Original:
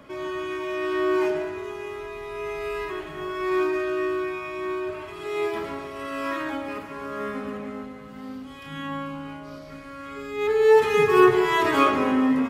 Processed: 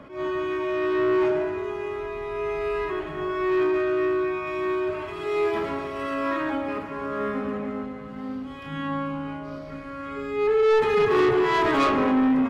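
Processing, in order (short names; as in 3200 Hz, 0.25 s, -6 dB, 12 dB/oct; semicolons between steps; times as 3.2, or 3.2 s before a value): LPF 1900 Hz 6 dB/oct, from 4.47 s 3500 Hz, from 6.14 s 1900 Hz; soft clip -21 dBFS, distortion -8 dB; attack slew limiter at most 140 dB/s; gain +4.5 dB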